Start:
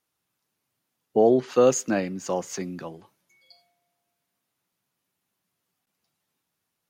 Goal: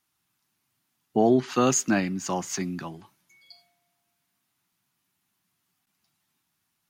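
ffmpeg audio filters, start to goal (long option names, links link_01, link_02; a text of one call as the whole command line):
ffmpeg -i in.wav -af "equalizer=frequency=500:width=2.5:gain=-14.5,volume=4dB" out.wav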